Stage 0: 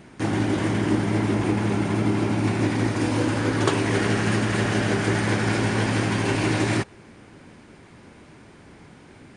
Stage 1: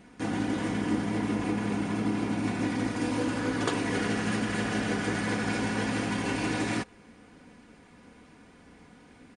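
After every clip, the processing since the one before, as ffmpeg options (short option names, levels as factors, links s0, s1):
-af "aecho=1:1:4.1:0.53,volume=0.447"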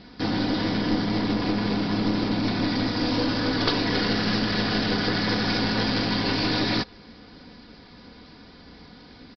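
-af "lowshelf=f=64:g=7,aexciter=amount=3.7:drive=8.6:freq=3800,aresample=11025,aeval=exprs='clip(val(0),-1,0.0355)':c=same,aresample=44100,volume=1.88"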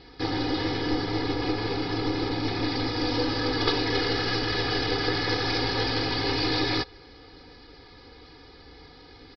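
-af "aecho=1:1:2.4:0.9,areverse,acompressor=mode=upward:threshold=0.00708:ratio=2.5,areverse,volume=0.668"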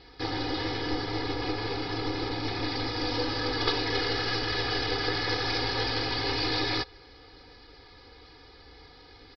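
-af "equalizer=f=210:t=o:w=1.5:g=-6,volume=0.841"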